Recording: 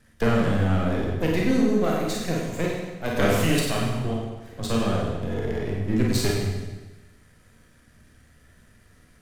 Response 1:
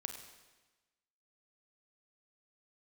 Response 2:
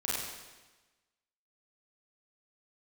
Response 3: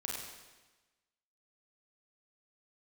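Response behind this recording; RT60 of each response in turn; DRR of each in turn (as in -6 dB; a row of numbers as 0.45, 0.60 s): 3; 1.2, 1.2, 1.2 s; 5.0, -7.5, -3.0 dB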